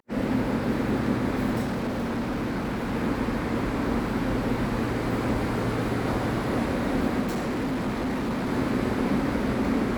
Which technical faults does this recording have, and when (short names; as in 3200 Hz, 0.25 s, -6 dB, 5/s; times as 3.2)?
1.62–2.95 clipped -24.5 dBFS
7.21–8.51 clipped -24.5 dBFS